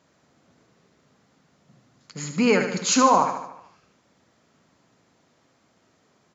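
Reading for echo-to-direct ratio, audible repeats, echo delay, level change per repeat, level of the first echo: −6.5 dB, 6, 74 ms, −5.0 dB, −8.0 dB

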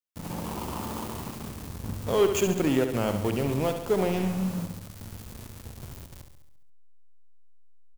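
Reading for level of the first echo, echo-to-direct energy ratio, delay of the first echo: −8.0 dB, −6.0 dB, 69 ms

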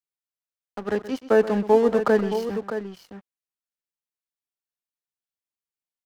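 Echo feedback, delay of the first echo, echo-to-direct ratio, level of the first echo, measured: repeats not evenly spaced, 127 ms, −8.5 dB, −14.5 dB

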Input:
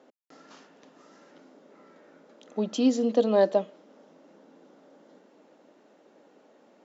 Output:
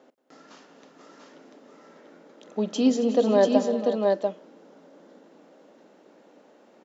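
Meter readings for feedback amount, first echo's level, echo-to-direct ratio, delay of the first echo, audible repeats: repeats not evenly spaced, −19.0 dB, −2.5 dB, 43 ms, 6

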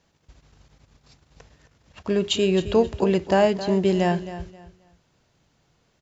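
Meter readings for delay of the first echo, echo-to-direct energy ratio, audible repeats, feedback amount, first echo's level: 266 ms, −13.0 dB, 2, 25%, −13.5 dB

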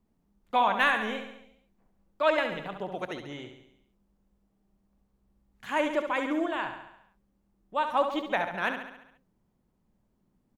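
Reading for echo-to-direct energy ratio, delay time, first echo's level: −6.5 dB, 69 ms, −8.0 dB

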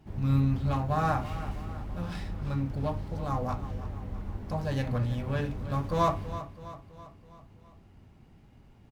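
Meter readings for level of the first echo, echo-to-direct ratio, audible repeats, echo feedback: −13.5 dB, −12.0 dB, 4, 53%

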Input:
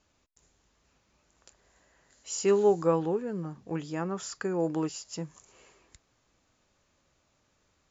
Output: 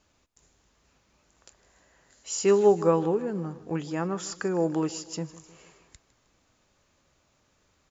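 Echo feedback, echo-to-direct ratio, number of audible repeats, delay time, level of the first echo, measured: 51%, −16.5 dB, 3, 156 ms, −18.0 dB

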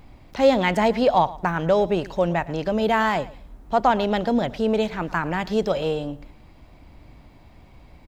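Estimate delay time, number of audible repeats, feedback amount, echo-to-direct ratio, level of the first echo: 112 ms, 2, 20%, −19.0 dB, −19.0 dB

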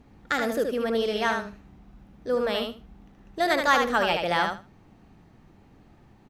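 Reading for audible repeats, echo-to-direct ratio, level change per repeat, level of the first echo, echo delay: 3, −5.0 dB, −15.0 dB, −5.0 dB, 75 ms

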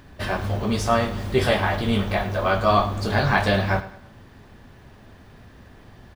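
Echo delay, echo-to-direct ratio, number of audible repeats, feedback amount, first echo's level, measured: 105 ms, −15.0 dB, 3, 38%, −15.5 dB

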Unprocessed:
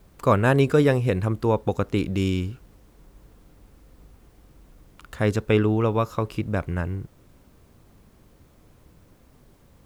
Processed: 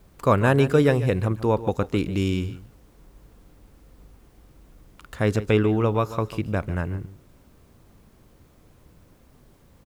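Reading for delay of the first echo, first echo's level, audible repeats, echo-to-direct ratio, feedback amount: 144 ms, −14.5 dB, 1, −14.5 dB, repeats not evenly spaced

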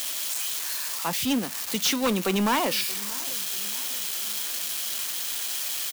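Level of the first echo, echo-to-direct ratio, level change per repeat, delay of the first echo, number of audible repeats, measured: −21.0 dB, −19.5 dB, −5.5 dB, 630 ms, 3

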